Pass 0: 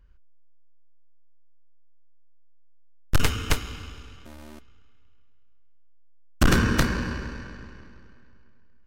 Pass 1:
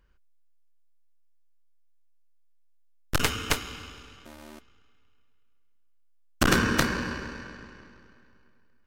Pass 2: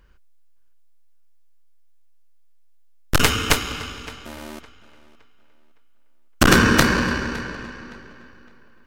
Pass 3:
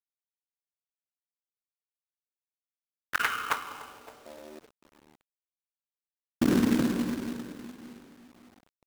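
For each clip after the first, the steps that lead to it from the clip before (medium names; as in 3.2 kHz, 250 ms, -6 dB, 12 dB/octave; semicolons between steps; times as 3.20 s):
bass shelf 140 Hz -12 dB; trim +1 dB
in parallel at -1 dB: peak limiter -16.5 dBFS, peak gain reduction 7.5 dB; on the sum: tape echo 563 ms, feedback 33%, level -18 dB, low-pass 4.8 kHz; trim +4.5 dB
band-pass sweep 2.5 kHz -> 260 Hz, 2.68–5.15 s; companded quantiser 4-bit; trim -3 dB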